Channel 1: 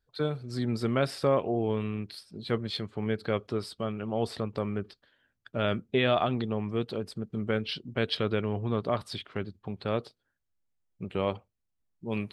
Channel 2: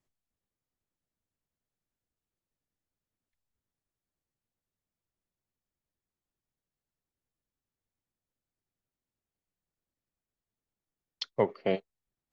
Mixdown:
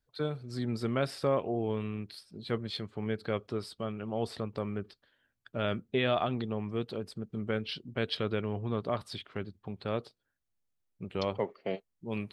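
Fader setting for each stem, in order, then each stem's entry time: -3.5, -6.0 dB; 0.00, 0.00 s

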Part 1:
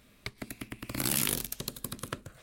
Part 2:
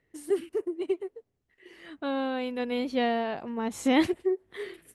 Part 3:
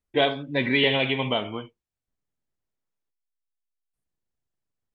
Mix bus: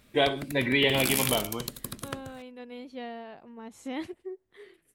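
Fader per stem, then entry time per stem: +0.5, -12.5, -2.5 dB; 0.00, 0.00, 0.00 s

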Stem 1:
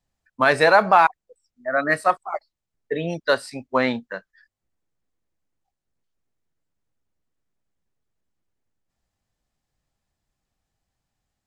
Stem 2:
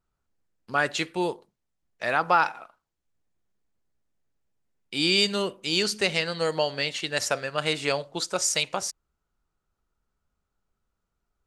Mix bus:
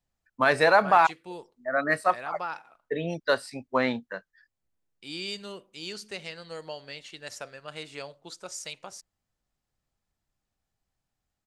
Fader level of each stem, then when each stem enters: -4.5, -13.5 dB; 0.00, 0.10 s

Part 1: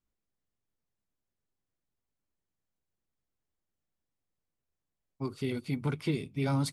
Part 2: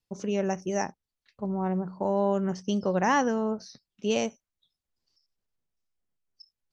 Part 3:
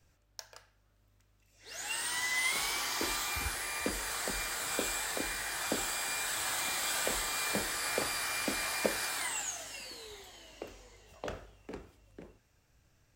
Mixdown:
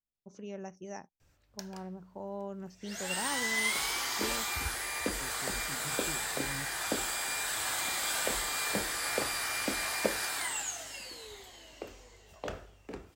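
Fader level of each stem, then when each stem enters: -15.0, -14.5, +1.0 dB; 0.00, 0.15, 1.20 s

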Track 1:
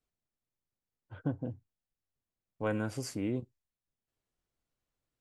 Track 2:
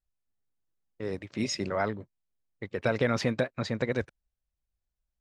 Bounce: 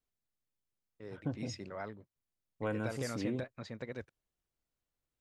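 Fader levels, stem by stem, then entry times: -3.5, -13.5 dB; 0.00, 0.00 s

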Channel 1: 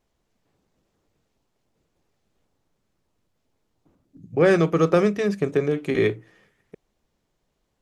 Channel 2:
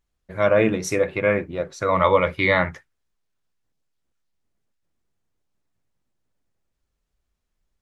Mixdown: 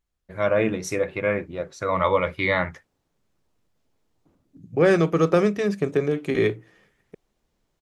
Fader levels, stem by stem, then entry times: -0.5, -3.5 dB; 0.40, 0.00 s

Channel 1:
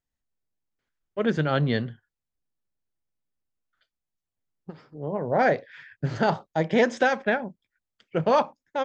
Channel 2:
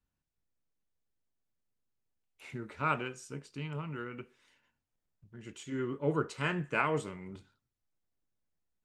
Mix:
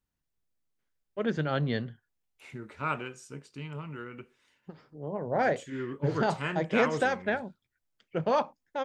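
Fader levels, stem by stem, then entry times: -5.5, -0.5 dB; 0.00, 0.00 s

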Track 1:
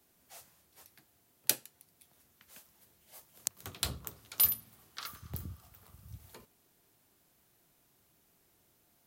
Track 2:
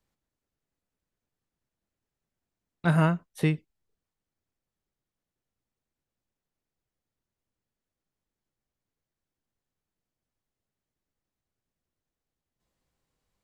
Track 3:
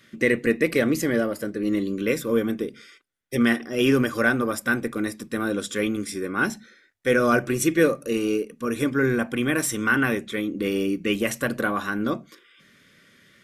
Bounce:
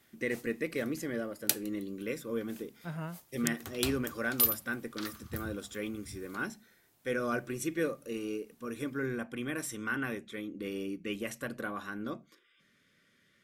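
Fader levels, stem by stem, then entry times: 0.0, -17.0, -13.0 dB; 0.00, 0.00, 0.00 s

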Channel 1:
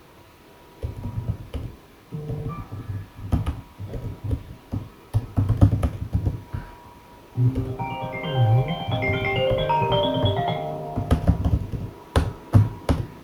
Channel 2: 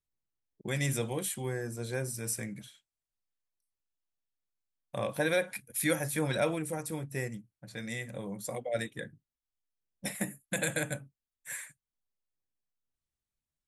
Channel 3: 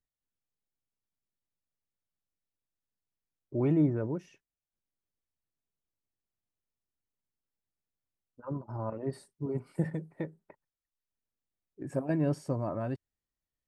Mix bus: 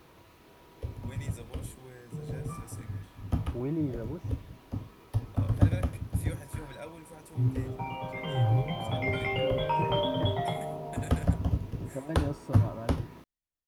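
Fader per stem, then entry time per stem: -7.0, -14.5, -5.5 dB; 0.00, 0.40, 0.00 s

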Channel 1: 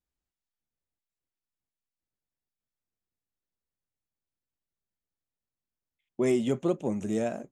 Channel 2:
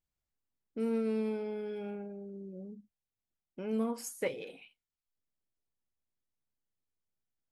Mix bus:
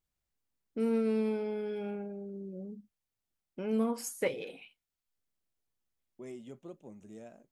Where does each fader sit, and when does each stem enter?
-20.0, +2.5 dB; 0.00, 0.00 s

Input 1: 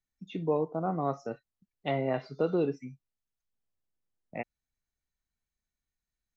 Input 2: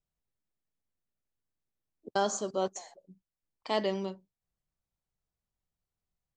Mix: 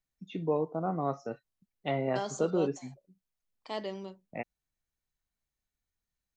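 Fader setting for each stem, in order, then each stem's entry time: -1.0, -7.0 dB; 0.00, 0.00 s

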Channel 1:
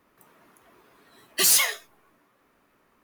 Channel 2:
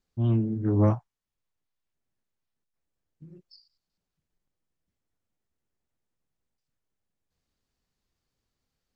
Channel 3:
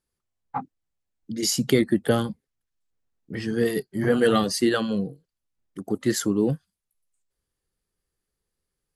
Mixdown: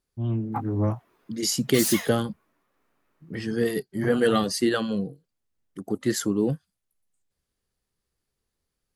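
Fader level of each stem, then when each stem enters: -8.5, -3.0, -1.5 dB; 0.35, 0.00, 0.00 s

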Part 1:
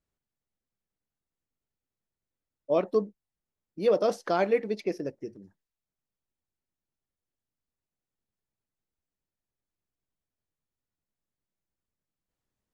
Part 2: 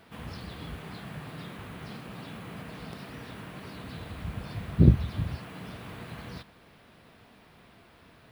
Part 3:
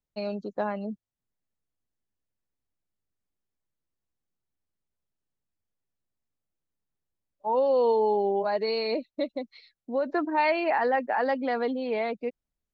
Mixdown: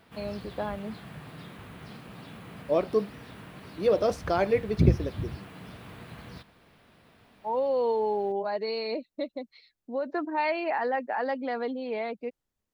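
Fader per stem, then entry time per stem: 0.0, -3.0, -3.5 dB; 0.00, 0.00, 0.00 s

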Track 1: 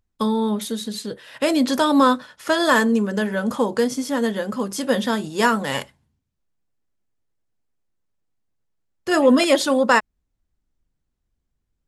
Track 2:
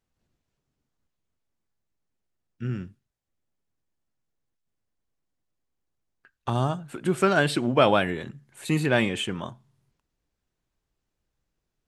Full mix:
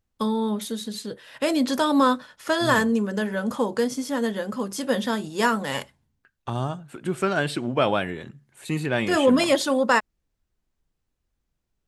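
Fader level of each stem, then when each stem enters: -3.5, -2.5 dB; 0.00, 0.00 s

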